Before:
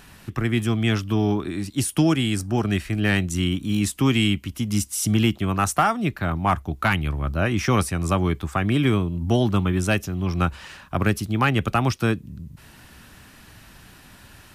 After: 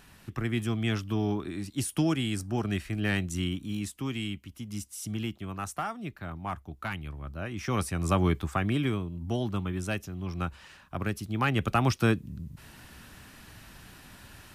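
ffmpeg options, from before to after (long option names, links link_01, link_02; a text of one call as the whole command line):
ffmpeg -i in.wav -af "volume=12dB,afade=type=out:start_time=3.41:duration=0.56:silence=0.473151,afade=type=in:start_time=7.55:duration=0.72:silence=0.266073,afade=type=out:start_time=8.27:duration=0.7:silence=0.398107,afade=type=in:start_time=11.15:duration=0.86:silence=0.398107" out.wav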